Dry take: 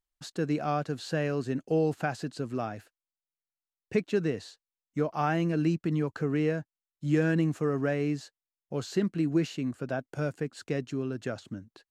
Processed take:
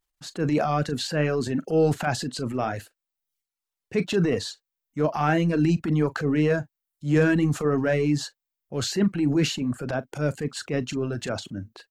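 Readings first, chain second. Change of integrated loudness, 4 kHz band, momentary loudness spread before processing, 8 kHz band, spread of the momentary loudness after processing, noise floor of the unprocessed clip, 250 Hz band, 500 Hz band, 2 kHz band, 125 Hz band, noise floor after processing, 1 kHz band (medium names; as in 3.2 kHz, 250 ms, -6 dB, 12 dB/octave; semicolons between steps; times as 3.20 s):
+5.5 dB, +11.0 dB, 11 LU, +12.0 dB, 11 LU, under -85 dBFS, +5.0 dB, +5.0 dB, +6.5 dB, +5.5 dB, under -85 dBFS, +5.0 dB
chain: transient shaper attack -7 dB, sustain +7 dB; doubling 40 ms -11 dB; reverb removal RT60 0.69 s; trim +7 dB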